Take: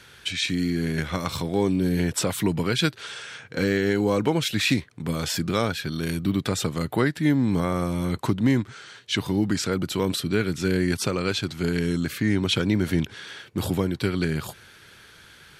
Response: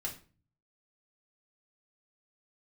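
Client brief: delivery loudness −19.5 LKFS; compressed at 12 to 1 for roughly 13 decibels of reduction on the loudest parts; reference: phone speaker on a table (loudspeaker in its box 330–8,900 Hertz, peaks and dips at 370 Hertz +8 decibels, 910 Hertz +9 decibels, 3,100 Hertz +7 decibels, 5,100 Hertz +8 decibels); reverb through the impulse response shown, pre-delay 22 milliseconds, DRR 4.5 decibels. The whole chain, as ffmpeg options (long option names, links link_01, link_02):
-filter_complex "[0:a]acompressor=threshold=-30dB:ratio=12,asplit=2[link_01][link_02];[1:a]atrim=start_sample=2205,adelay=22[link_03];[link_02][link_03]afir=irnorm=-1:irlink=0,volume=-5dB[link_04];[link_01][link_04]amix=inputs=2:normalize=0,highpass=frequency=330:width=0.5412,highpass=frequency=330:width=1.3066,equalizer=frequency=370:width_type=q:width=4:gain=8,equalizer=frequency=910:width_type=q:width=4:gain=9,equalizer=frequency=3100:width_type=q:width=4:gain=7,equalizer=frequency=5100:width_type=q:width=4:gain=8,lowpass=frequency=8900:width=0.5412,lowpass=frequency=8900:width=1.3066,volume=13dB"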